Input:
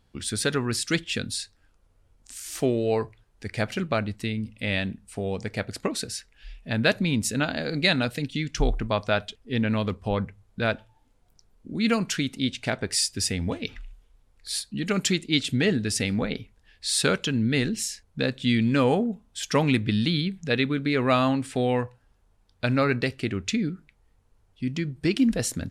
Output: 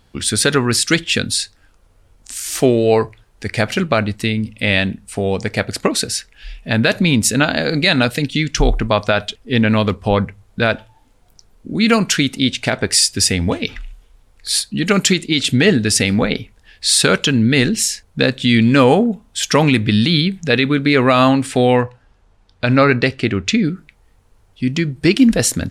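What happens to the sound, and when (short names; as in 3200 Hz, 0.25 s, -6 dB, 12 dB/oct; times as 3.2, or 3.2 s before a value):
21.76–23.64 air absorption 61 m
whole clip: low shelf 420 Hz -3 dB; maximiser +13.5 dB; gain -1 dB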